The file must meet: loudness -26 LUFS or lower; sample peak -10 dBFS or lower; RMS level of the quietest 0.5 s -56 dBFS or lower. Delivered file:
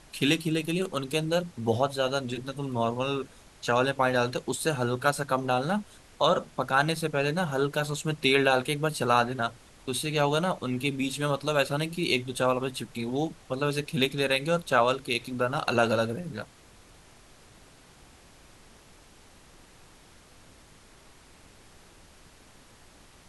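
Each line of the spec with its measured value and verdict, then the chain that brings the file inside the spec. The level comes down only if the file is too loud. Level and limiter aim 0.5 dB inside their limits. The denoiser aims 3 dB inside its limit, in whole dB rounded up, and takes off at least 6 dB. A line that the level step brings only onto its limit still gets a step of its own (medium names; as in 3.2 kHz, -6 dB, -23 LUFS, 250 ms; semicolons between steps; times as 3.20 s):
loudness -27.5 LUFS: pass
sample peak -8.0 dBFS: fail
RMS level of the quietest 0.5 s -54 dBFS: fail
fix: noise reduction 6 dB, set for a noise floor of -54 dBFS; peak limiter -10.5 dBFS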